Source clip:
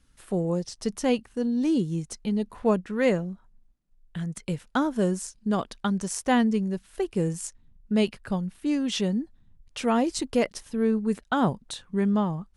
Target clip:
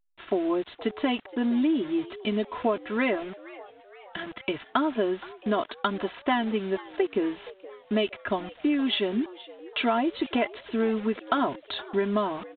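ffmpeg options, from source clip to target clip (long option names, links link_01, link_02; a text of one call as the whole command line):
ffmpeg -i in.wav -filter_complex "[0:a]highpass=76,lowshelf=frequency=250:gain=-11.5,aecho=1:1:3:0.96,acompressor=threshold=-29dB:ratio=8,acrusher=bits=7:mix=0:aa=0.000001,asplit=6[link_01][link_02][link_03][link_04][link_05][link_06];[link_02]adelay=470,afreqshift=93,volume=-19dB[link_07];[link_03]adelay=940,afreqshift=186,volume=-24.2dB[link_08];[link_04]adelay=1410,afreqshift=279,volume=-29.4dB[link_09];[link_05]adelay=1880,afreqshift=372,volume=-34.6dB[link_10];[link_06]adelay=2350,afreqshift=465,volume=-39.8dB[link_11];[link_01][link_07][link_08][link_09][link_10][link_11]amix=inputs=6:normalize=0,volume=7.5dB" -ar 8000 -c:a pcm_alaw out.wav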